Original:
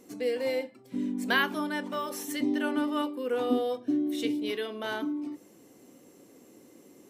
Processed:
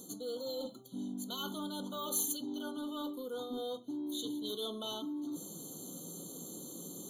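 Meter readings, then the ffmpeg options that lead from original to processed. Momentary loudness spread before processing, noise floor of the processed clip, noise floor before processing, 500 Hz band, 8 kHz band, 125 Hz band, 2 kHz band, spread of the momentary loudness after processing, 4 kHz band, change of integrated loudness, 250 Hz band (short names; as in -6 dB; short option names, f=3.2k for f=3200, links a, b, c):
7 LU, -50 dBFS, -57 dBFS, -10.0 dB, +6.0 dB, -2.5 dB, -24.0 dB, 9 LU, -3.5 dB, -9.0 dB, -9.5 dB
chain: -af "equalizer=f=170:t=o:w=0.35:g=14.5,areverse,acompressor=threshold=-41dB:ratio=8,areverse,asoftclip=type=tanh:threshold=-35dB,aexciter=amount=5.3:drive=2.1:freq=2.7k,afftfilt=real='re*eq(mod(floor(b*sr/1024/1500),2),0)':imag='im*eq(mod(floor(b*sr/1024/1500),2),0)':win_size=1024:overlap=0.75,volume=4dB"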